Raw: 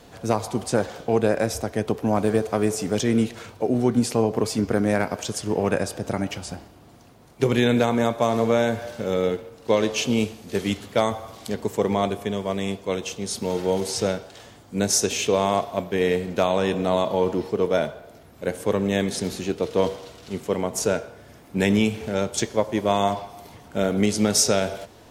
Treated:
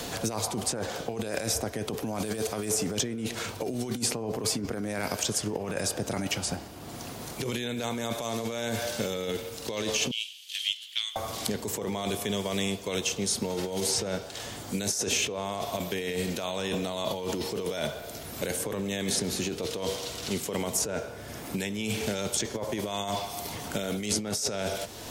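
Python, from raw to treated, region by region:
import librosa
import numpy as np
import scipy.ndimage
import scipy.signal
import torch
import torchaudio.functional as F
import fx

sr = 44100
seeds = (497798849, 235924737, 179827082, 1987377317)

y = fx.chain(x, sr, fx.ladder_highpass(hz=2900.0, resonance_pct=75),
    fx.doppler_dist(depth_ms=0.23), at=(10.11, 11.16))
y = fx.over_compress(y, sr, threshold_db=-27.0, ratio=-1.0)
y = fx.high_shelf(y, sr, hz=3300.0, db=7.5)
y = fx.band_squash(y, sr, depth_pct=70)
y = y * 10.0 ** (-5.0 / 20.0)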